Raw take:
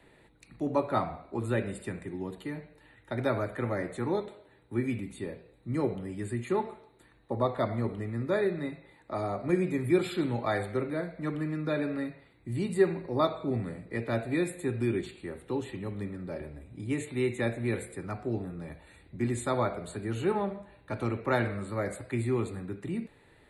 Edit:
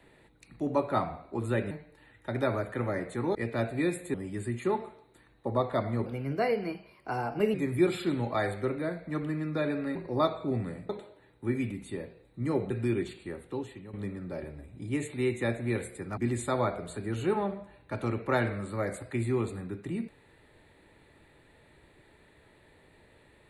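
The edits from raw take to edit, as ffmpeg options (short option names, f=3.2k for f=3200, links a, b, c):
-filter_complex "[0:a]asplit=11[a][b][c][d][e][f][g][h][i][j][k];[a]atrim=end=1.712[l];[b]atrim=start=2.538:end=4.182[m];[c]atrim=start=13.888:end=14.682[n];[d]atrim=start=5.988:end=7.914[o];[e]atrim=start=7.91:end=9.66,asetpts=PTS-STARTPTS,asetrate=52038,aresample=44100[p];[f]atrim=start=9.656:end=12.072[q];[g]atrim=start=12.948:end=13.892[r];[h]atrim=start=4.178:end=5.992[s];[i]atrim=start=14.678:end=15.91,asetpts=PTS-STARTPTS,afade=t=out:st=0.622:d=0.61:silence=0.266073[t];[j]atrim=start=15.91:end=18.152,asetpts=PTS-STARTPTS,afade=t=in:d=0.004:c=hsin:silence=0.266073[u];[k]atrim=start=19.158[v];[l][m]acrossfade=d=0.004:c1=hsin:c2=hsin[w];[w][n]acrossfade=d=0.004:c1=hsin:c2=hsin[x];[x][o]acrossfade=d=0.004:c1=hsin:c2=hsin[y];[y][p]acrossfade=d=0.004:c1=hsin:c2=hsin[z];[z][q]acrossfade=d=0.004:c1=hsin:c2=hsin[aa];[aa][r]acrossfade=d=0.004:c1=hsin:c2=hsin[ab];[ab][s]acrossfade=d=0.004:c1=hsin:c2=hsin[ac];[t][u]concat=n=2:v=0:a=1[ad];[ac][ad]acrossfade=d=0.004:c1=hsin:c2=hsin[ae];[ae][v]acrossfade=d=0.004:c1=hsin:c2=hsin"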